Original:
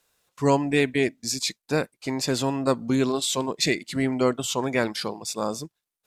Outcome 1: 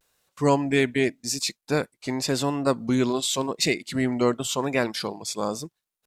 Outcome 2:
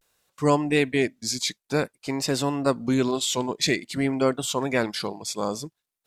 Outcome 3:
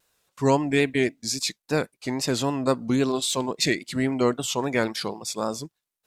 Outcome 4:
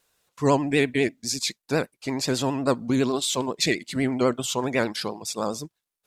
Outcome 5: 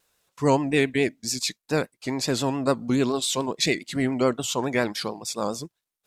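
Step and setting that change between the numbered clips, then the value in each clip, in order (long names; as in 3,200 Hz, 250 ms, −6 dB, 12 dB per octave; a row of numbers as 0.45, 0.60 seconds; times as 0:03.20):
pitch vibrato, speed: 0.9, 0.52, 3.7, 12, 7.1 Hertz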